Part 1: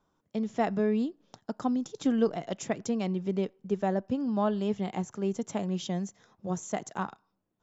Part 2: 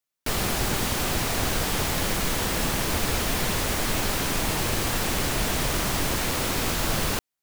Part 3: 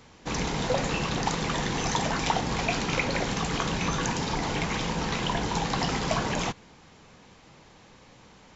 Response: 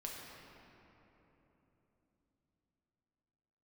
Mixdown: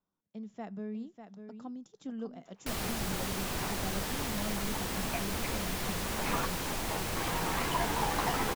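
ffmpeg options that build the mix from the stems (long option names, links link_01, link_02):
-filter_complex "[0:a]equalizer=frequency=200:width=4:gain=7,volume=-16dB,asplit=3[link_01][link_02][link_03];[link_02]volume=-8.5dB[link_04];[1:a]adelay=2400,volume=-10dB[link_05];[2:a]lowpass=1500,aemphasis=mode=production:type=riaa,asplit=2[link_06][link_07];[link_07]adelay=11.9,afreqshift=-0.48[link_08];[link_06][link_08]amix=inputs=2:normalize=1,adelay=2450,volume=2.5dB[link_09];[link_03]apad=whole_len=485645[link_10];[link_09][link_10]sidechaincompress=threshold=-55dB:ratio=8:attack=16:release=205[link_11];[link_04]aecho=0:1:597:1[link_12];[link_01][link_05][link_11][link_12]amix=inputs=4:normalize=0"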